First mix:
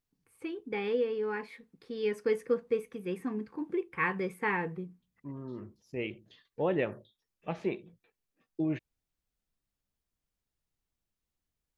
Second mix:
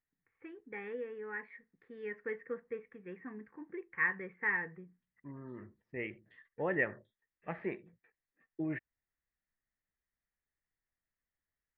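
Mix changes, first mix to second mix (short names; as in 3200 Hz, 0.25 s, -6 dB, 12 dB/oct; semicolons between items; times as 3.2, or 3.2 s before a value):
second voice +6.0 dB; master: add ladder low-pass 2000 Hz, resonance 75%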